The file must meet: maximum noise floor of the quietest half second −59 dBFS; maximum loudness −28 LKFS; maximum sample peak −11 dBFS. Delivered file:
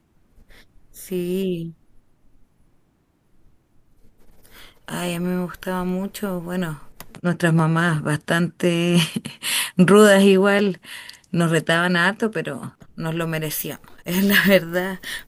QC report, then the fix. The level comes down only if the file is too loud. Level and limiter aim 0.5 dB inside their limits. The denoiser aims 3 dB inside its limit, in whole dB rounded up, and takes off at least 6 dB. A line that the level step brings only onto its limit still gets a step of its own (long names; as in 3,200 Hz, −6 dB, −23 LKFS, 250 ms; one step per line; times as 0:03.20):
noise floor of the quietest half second −63 dBFS: in spec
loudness −20.0 LKFS: out of spec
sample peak −2.5 dBFS: out of spec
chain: level −8.5 dB
brickwall limiter −11.5 dBFS